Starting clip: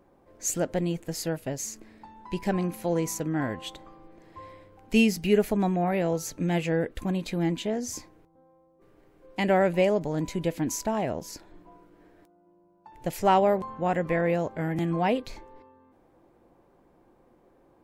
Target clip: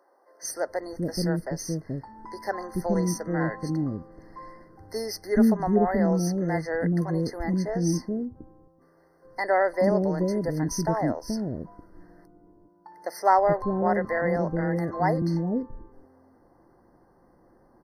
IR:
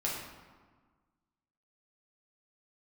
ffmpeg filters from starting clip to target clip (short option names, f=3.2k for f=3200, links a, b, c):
-filter_complex "[0:a]acrossover=split=430[a][b];[a]adelay=430[c];[c][b]amix=inputs=2:normalize=0,afftfilt=real='re*eq(mod(floor(b*sr/1024/2100),2),0)':imag='im*eq(mod(floor(b*sr/1024/2100),2),0)':win_size=1024:overlap=0.75,volume=3dB"